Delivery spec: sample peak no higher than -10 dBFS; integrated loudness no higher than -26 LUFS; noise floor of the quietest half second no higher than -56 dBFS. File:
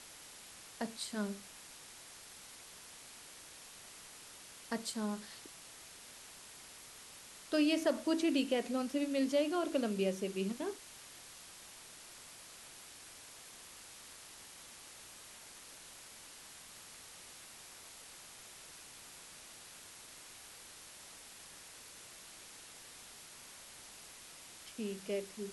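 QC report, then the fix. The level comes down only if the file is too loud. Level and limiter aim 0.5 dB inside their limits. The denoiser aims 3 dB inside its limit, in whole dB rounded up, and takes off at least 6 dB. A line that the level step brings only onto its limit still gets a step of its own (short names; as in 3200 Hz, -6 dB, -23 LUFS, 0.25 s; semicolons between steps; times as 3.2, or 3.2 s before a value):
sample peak -20.0 dBFS: OK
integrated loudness -42.0 LUFS: OK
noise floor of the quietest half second -54 dBFS: fail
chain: denoiser 6 dB, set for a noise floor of -54 dBFS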